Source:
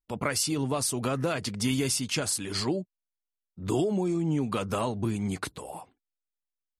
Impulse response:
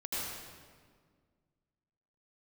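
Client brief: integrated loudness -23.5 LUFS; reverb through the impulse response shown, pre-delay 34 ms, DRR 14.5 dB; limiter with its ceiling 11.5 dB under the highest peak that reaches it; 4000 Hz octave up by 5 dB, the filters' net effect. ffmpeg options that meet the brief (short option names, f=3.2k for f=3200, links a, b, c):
-filter_complex "[0:a]equalizer=f=4k:t=o:g=6.5,alimiter=limit=-22dB:level=0:latency=1,asplit=2[a][b];[1:a]atrim=start_sample=2205,adelay=34[c];[b][c]afir=irnorm=-1:irlink=0,volume=-18.5dB[d];[a][d]amix=inputs=2:normalize=0,volume=8dB"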